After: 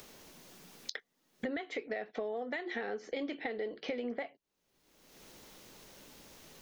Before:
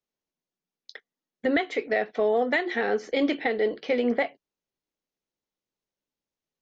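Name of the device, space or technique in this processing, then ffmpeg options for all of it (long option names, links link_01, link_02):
upward and downward compression: -af "acompressor=mode=upward:threshold=-29dB:ratio=2.5,acompressor=threshold=-36dB:ratio=8,volume=1dB"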